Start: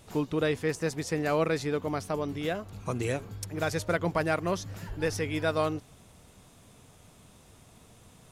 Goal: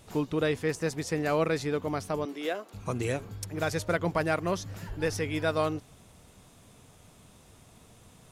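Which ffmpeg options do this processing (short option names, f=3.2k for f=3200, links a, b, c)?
-filter_complex "[0:a]asettb=1/sr,asplit=3[a][b][c];[a]atrim=end=2.254[d];[b]atrim=start=2.25:end=2.74,asetpts=PTS-STARTPTS,afade=t=in:d=0.004:c=qsin,afade=t=out:st=0.486:d=0.004:c=qsin,highpass=f=280:w=0.5412,highpass=f=280:w=1.3066[e];[c]atrim=start=2.736[f];[d][e]acrossfade=d=0.004:c1=hsin:c2=qsin[g];[g][f]acrossfade=d=0.004:c1=qsin:c2=hsin"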